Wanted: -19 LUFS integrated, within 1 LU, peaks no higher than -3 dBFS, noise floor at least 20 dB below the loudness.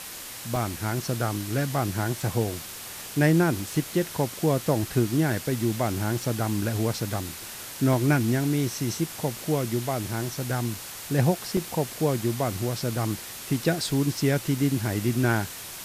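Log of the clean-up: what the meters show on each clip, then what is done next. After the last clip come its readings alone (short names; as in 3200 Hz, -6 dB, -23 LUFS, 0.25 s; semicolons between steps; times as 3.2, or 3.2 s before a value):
dropouts 6; longest dropout 2.0 ms; noise floor -39 dBFS; noise floor target -47 dBFS; loudness -26.5 LUFS; peak -9.0 dBFS; loudness target -19.0 LUFS
-> interpolate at 0.56/7.93/10.75/11.57/12.8/14.58, 2 ms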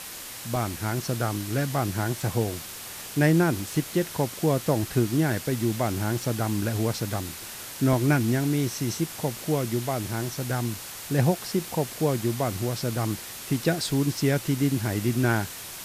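dropouts 0; noise floor -39 dBFS; noise floor target -47 dBFS
-> denoiser 8 dB, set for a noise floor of -39 dBFS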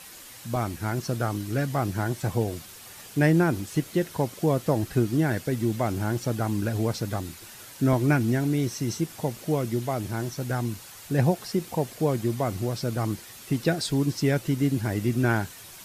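noise floor -45 dBFS; noise floor target -47 dBFS
-> denoiser 6 dB, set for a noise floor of -45 dBFS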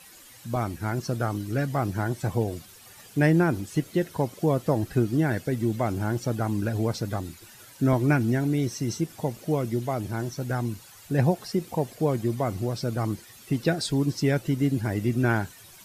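noise floor -50 dBFS; loudness -27.0 LUFS; peak -9.5 dBFS; loudness target -19.0 LUFS
-> gain +8 dB; limiter -3 dBFS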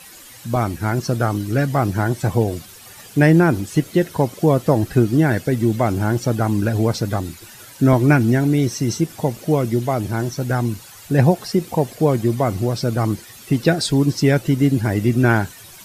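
loudness -19.0 LUFS; peak -3.0 dBFS; noise floor -42 dBFS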